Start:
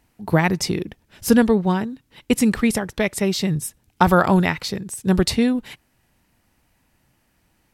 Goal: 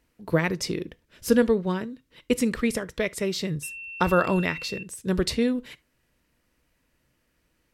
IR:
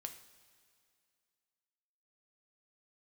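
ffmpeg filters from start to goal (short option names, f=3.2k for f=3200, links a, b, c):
-filter_complex "[0:a]equalizer=f=100:t=o:w=0.33:g=-10,equalizer=f=200:t=o:w=0.33:g=-5,equalizer=f=500:t=o:w=0.33:g=5,equalizer=f=800:t=o:w=0.33:g=-11,asettb=1/sr,asplit=3[a][b][c];[a]atrim=end=3.634[d];[b]atrim=start=3.63:end=4.83,asetpts=PTS-STARTPTS,afade=t=in:d=0.004:c=qsin,afade=t=out:st=1.196:d=0.004:c=qsin,aeval=exprs='val(0)+0.0316*sin(2*PI*2700*n/s)':c=same[e];[c]atrim=start=4.826[f];[d][e]acrossfade=d=0.004:c1=hsin:c2=qsin[g];[g][f]acrossfade=d=0.004:c1=qsin:c2=hsin,asplit=2[h][i];[1:a]atrim=start_sample=2205,atrim=end_sample=3528,lowpass=8.3k[j];[i][j]afir=irnorm=-1:irlink=0,volume=-4.5dB[k];[h][k]amix=inputs=2:normalize=0,volume=-7.5dB"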